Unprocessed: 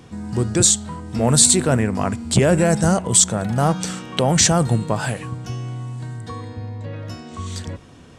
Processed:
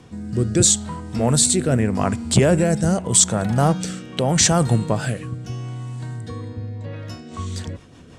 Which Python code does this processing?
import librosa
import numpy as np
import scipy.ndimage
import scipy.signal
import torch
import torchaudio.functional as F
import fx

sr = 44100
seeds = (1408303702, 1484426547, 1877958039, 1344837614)

y = fx.rotary_switch(x, sr, hz=0.8, then_hz=6.0, switch_at_s=6.83)
y = y * 10.0 ** (1.5 / 20.0)